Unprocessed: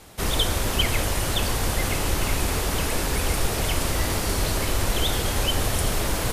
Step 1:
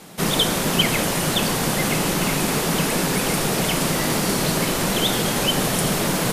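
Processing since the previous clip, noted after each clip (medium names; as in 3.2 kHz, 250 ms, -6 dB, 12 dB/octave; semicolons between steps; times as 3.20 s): resonant low shelf 110 Hz -14 dB, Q 3; trim +4.5 dB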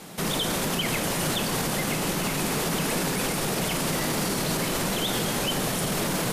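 peak limiter -17.5 dBFS, peak gain reduction 11.5 dB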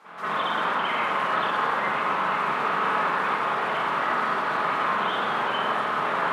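band-pass filter 1.2 kHz, Q 2.6; reverberation RT60 0.95 s, pre-delay 41 ms, DRR -12.5 dB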